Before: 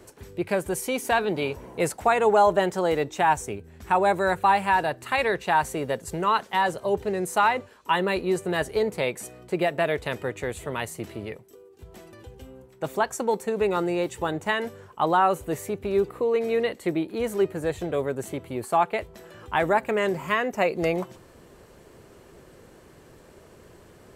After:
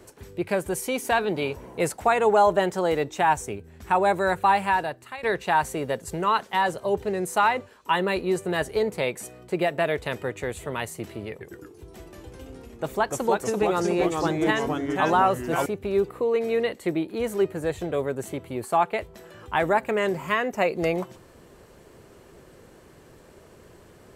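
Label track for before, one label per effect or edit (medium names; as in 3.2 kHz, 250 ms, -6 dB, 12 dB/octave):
4.650000	5.230000	fade out, to -18.5 dB
11.300000	15.660000	ever faster or slower copies 106 ms, each echo -2 st, echoes 3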